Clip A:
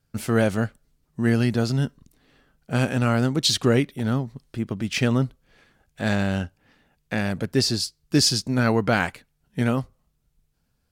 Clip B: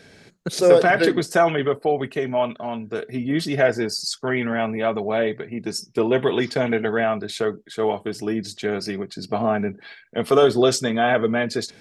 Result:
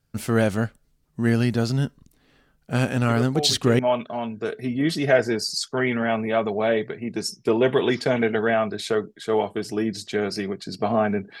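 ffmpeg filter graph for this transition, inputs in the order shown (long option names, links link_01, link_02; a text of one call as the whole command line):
ffmpeg -i cue0.wav -i cue1.wav -filter_complex "[1:a]asplit=2[link_01][link_02];[0:a]apad=whole_dur=11.4,atrim=end=11.4,atrim=end=3.792[link_03];[link_02]atrim=start=2.288:end=9.9[link_04];[link_01]atrim=start=1.59:end=2.29,asetpts=PTS-STARTPTS,volume=-8.5dB,afade=type=in:duration=0.004:curve=hsin,afade=type=out:start_time=0.696:duration=0.004:curve=hsin,adelay=136269S[link_05];[link_03][link_04]acrossfade=duration=0.004:curve1=hsin:curve2=hsin[link_06];[link_06][link_05]amix=inputs=2:normalize=0" out.wav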